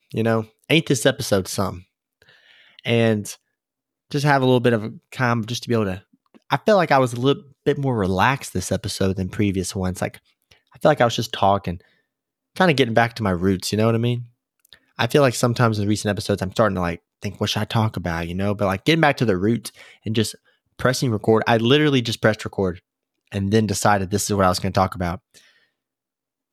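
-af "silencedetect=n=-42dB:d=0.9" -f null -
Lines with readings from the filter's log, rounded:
silence_start: 25.41
silence_end: 26.52 | silence_duration: 1.12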